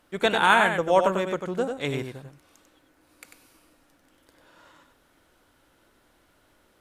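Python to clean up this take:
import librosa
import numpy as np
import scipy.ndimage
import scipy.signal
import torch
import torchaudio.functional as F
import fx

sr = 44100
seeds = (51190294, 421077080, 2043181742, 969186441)

y = fx.fix_echo_inverse(x, sr, delay_ms=95, level_db=-6.0)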